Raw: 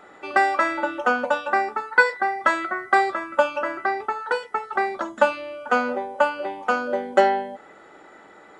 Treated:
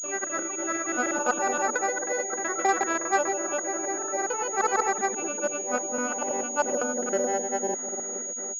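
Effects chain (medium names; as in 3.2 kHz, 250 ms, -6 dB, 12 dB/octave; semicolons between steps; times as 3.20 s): time reversed locally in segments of 168 ms; compression 2:1, threshold -25 dBFS, peak gain reduction 8.5 dB; rotary cabinet horn 0.6 Hz; bucket-brigade echo 456 ms, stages 2048, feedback 59%, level -5.5 dB; granulator, spray 293 ms, pitch spread up and down by 0 st; class-D stage that switches slowly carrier 6.7 kHz; trim +2.5 dB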